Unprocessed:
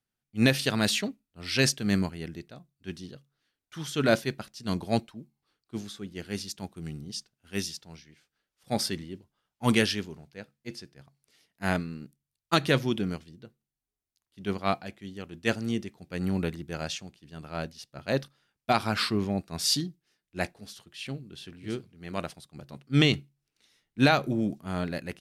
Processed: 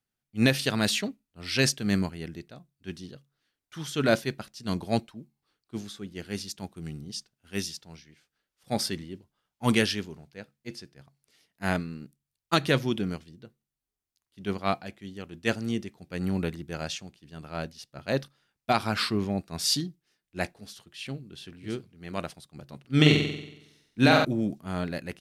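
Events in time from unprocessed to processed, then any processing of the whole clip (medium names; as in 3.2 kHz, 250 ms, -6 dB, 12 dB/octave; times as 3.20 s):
22.80–24.25 s: flutter echo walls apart 7.9 m, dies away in 0.84 s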